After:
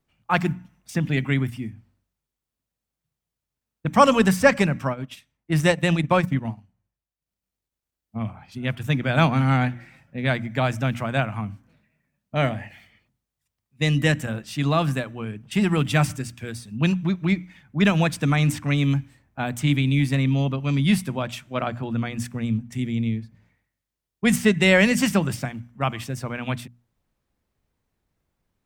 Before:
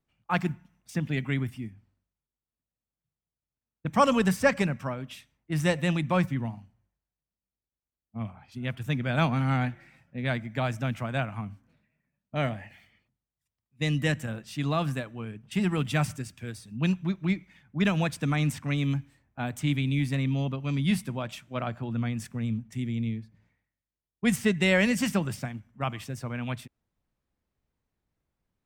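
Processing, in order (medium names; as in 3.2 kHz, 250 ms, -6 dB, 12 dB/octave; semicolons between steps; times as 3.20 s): hum notches 60/120/180/240/300 Hz; 4.77–8.19 s: transient shaper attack +2 dB, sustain -10 dB; trim +6.5 dB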